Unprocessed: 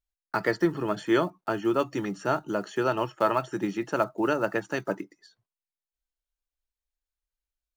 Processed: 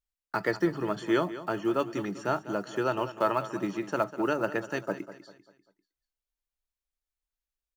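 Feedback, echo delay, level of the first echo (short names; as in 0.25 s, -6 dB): 41%, 0.197 s, -14.0 dB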